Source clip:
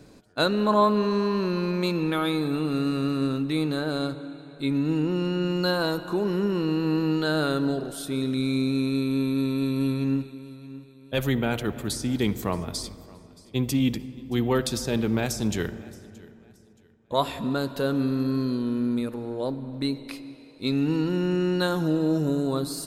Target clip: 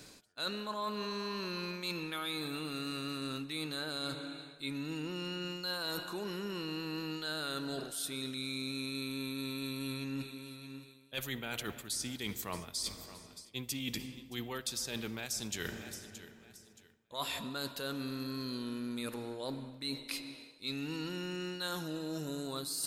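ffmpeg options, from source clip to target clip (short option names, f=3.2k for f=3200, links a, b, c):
-af "tiltshelf=f=1.3k:g=-8.5,areverse,acompressor=threshold=-36dB:ratio=6,areverse"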